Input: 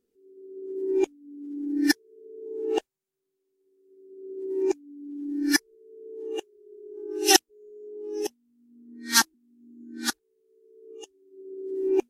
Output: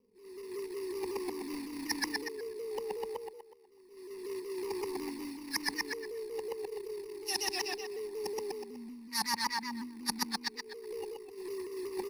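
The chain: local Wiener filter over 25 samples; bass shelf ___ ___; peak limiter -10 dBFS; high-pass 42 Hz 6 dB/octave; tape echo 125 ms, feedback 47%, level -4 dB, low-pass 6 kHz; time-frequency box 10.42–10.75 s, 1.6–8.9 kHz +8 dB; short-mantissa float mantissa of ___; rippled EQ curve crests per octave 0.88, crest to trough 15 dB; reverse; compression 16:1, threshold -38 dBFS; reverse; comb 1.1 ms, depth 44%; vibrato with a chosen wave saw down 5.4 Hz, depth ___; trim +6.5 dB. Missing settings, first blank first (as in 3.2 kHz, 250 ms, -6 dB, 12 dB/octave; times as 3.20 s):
150 Hz, -6.5 dB, 2-bit, 100 cents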